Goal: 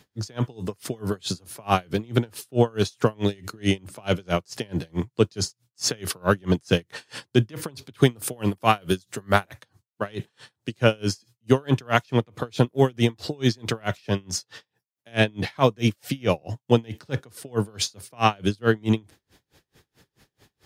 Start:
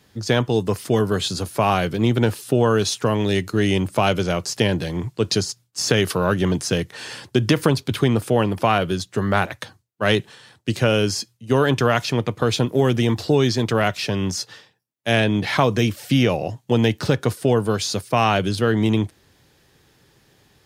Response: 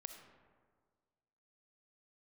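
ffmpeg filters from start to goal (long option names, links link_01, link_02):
-filter_complex "[0:a]asettb=1/sr,asplit=3[link_01][link_02][link_03];[link_01]atrim=end=8.024[link_04];[link_02]atrim=start=8.02:end=9.53,asetpts=PTS-STARTPTS,afade=type=in:duration=0.004:curve=qsin,afade=type=out:start_time=1.506:duration=0.004:curve=qsin,highshelf=frequency=6600:gain=11.5[link_05];[link_03]atrim=start=9.526[link_06];[link_04][link_05]acrossfade=duration=0.004:curve1=hsin:curve2=qsin[link_07];[link_07][link_06]acrossfade=duration=0.004:curve1=qsin:curve2=hsin,aeval=exprs='val(0)*pow(10,-34*(0.5-0.5*cos(2*PI*4.6*n/s))/20)':channel_layout=same,volume=2.5dB"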